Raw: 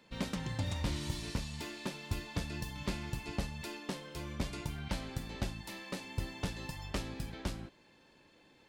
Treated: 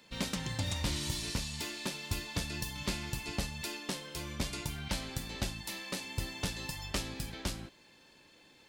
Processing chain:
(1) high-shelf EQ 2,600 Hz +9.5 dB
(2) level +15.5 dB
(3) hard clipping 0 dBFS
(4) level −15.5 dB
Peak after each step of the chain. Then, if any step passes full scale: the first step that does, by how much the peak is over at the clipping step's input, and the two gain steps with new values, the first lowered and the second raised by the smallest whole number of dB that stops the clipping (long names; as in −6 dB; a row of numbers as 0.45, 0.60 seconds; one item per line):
−18.5, −3.0, −3.0, −18.5 dBFS
no step passes full scale